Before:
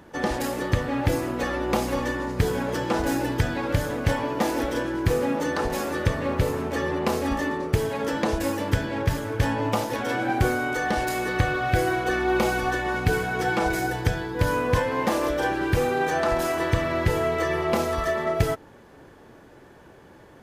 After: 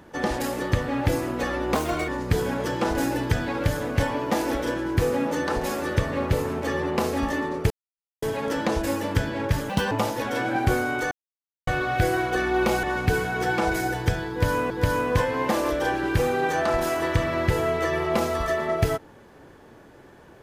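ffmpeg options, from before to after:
ffmpeg -i in.wav -filter_complex "[0:a]asplit=10[link_01][link_02][link_03][link_04][link_05][link_06][link_07][link_08][link_09][link_10];[link_01]atrim=end=1.754[link_11];[link_02]atrim=start=1.75:end=2.17,asetpts=PTS-STARTPTS,asetrate=55566,aresample=44100[link_12];[link_03]atrim=start=2.166:end=7.79,asetpts=PTS-STARTPTS,afade=type=out:start_time=5.62:duration=0.004:curve=hsin,apad=pad_dur=0.52[link_13];[link_04]atrim=start=7.79:end=9.264,asetpts=PTS-STARTPTS,afade=type=in:duration=0.004:curve=hsin[link_14];[link_05]atrim=start=9.26:end=9.65,asetpts=PTS-STARTPTS,asetrate=78498,aresample=44100,atrim=end_sample=9662,asetpts=PTS-STARTPTS[link_15];[link_06]atrim=start=9.646:end=10.85,asetpts=PTS-STARTPTS,afade=type=out:start_time=1.2:duration=0.004:curve=hsin[link_16];[link_07]atrim=start=10.85:end=11.41,asetpts=PTS-STARTPTS,volume=0[link_17];[link_08]atrim=start=11.41:end=12.572,asetpts=PTS-STARTPTS,afade=type=in:duration=0.004:curve=hsin[link_18];[link_09]atrim=start=12.818:end=14.692[link_19];[link_10]atrim=start=14.278[link_20];[link_11][link_12]acrossfade=duration=0.004:curve1=hsin:curve2=hsin[link_21];[link_13][link_14]concat=n=2:v=0:a=1[link_22];[link_21][link_22]acrossfade=duration=0.004:curve1=hsin:curve2=hsin[link_23];[link_23][link_15]acrossfade=duration=0.004:curve1=hsin:curve2=hsin[link_24];[link_16][link_17][link_18]concat=n=3:v=0:a=1[link_25];[link_24][link_25]acrossfade=duration=0.004:curve1=hsin:curve2=hsin[link_26];[link_26][link_19]acrossfade=duration=0.004:curve1=hsin:curve2=hsin[link_27];[link_27][link_20]acrossfade=duration=0.004:curve1=hsin:curve2=hsin" out.wav

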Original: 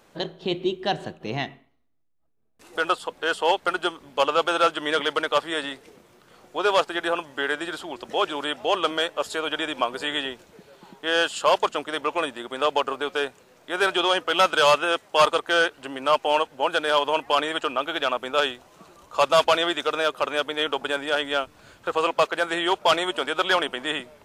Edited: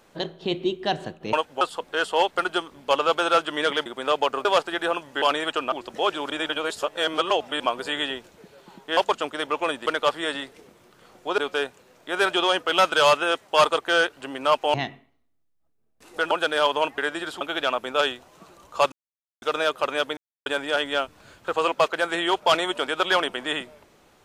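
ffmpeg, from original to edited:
ffmpeg -i in.wav -filter_complex "[0:a]asplit=20[link_01][link_02][link_03][link_04][link_05][link_06][link_07][link_08][link_09][link_10][link_11][link_12][link_13][link_14][link_15][link_16][link_17][link_18][link_19][link_20];[link_01]atrim=end=1.332[link_21];[link_02]atrim=start=16.348:end=16.632[link_22];[link_03]atrim=start=2.898:end=5.152[link_23];[link_04]atrim=start=12.398:end=12.992[link_24];[link_05]atrim=start=6.668:end=7.442[link_25];[link_06]atrim=start=17.298:end=17.802[link_26];[link_07]atrim=start=7.868:end=8.452[link_27];[link_08]atrim=start=8.448:end=9.752,asetpts=PTS-STARTPTS,areverse[link_28];[link_09]atrim=start=9.748:end=11.122[link_29];[link_10]atrim=start=11.508:end=12.402[link_30];[link_11]atrim=start=5.148:end=6.672[link_31];[link_12]atrim=start=12.988:end=16.352[link_32];[link_13]atrim=start=1.328:end=2.902[link_33];[link_14]atrim=start=16.628:end=17.302[link_34];[link_15]atrim=start=7.438:end=7.872[link_35];[link_16]atrim=start=17.798:end=19.31,asetpts=PTS-STARTPTS,afade=type=out:start_time=1.508:duration=0.004:curve=hsin[link_36];[link_17]atrim=start=19.31:end=19.81,asetpts=PTS-STARTPTS,volume=0[link_37];[link_18]atrim=start=19.81:end=20.56,asetpts=PTS-STARTPTS,afade=type=in:duration=0.004:curve=hsin,afade=type=out:start_time=0.746:duration=0.004:curve=hsin[link_38];[link_19]atrim=start=20.56:end=20.85,asetpts=PTS-STARTPTS,volume=0[link_39];[link_20]atrim=start=20.85,asetpts=PTS-STARTPTS,afade=type=in:duration=0.004:curve=hsin[link_40];[link_21][link_22]acrossfade=duration=0.004:curve1=hsin:curve2=hsin[link_41];[link_41][link_23]acrossfade=duration=0.004:curve1=hsin:curve2=hsin[link_42];[link_42][link_24]acrossfade=duration=0.004:curve1=hsin:curve2=hsin[link_43];[link_43][link_25]acrossfade=duration=0.004:curve1=hsin:curve2=hsin[link_44];[link_44][link_26]acrossfade=duration=0.004:curve1=hsin:curve2=hsin[link_45];[link_45][link_27]acrossfade=duration=0.004:curve1=hsin:curve2=hsin[link_46];[link_46][link_28]acrossfade=duration=0.004:curve1=hsin:curve2=hsin[link_47];[link_47][link_29]acrossfade=duration=0.004:curve1=hsin:curve2=hsin[link_48];[link_48][link_30]acrossfade=duration=0.004:curve1=hsin:curve2=hsin[link_49];[link_49][link_31]acrossfade=duration=0.004:curve1=hsin:curve2=hsin[link_50];[link_50][link_32]acrossfade=duration=0.004:curve1=hsin:curve2=hsin[link_51];[link_51][link_33]acrossfade=duration=0.004:curve1=hsin:curve2=hsin[link_52];[link_52][link_34]acrossfade=duration=0.004:curve1=hsin:curve2=hsin[link_53];[link_53][link_35]acrossfade=duration=0.004:curve1=hsin:curve2=hsin[link_54];[link_36][link_37][link_38][link_39][link_40]concat=n=5:v=0:a=1[link_55];[link_54][link_55]acrossfade=duration=0.004:curve1=hsin:curve2=hsin" out.wav

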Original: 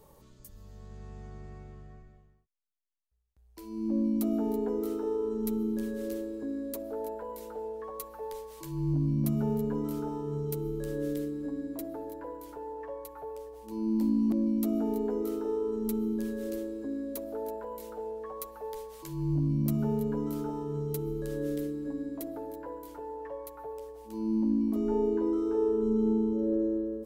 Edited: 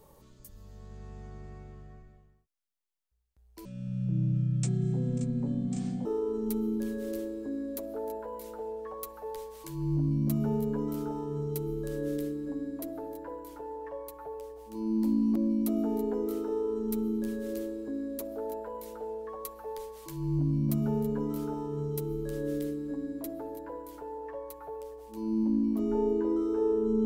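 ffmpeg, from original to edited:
ffmpeg -i in.wav -filter_complex "[0:a]asplit=3[link_01][link_02][link_03];[link_01]atrim=end=3.654[link_04];[link_02]atrim=start=3.65:end=5.02,asetpts=PTS-STARTPTS,asetrate=25137,aresample=44100[link_05];[link_03]atrim=start=5.016[link_06];[link_04][link_05]acrossfade=duration=0.004:curve1=hsin:curve2=hsin[link_07];[link_07][link_06]acrossfade=duration=0.004:curve1=hsin:curve2=hsin" out.wav

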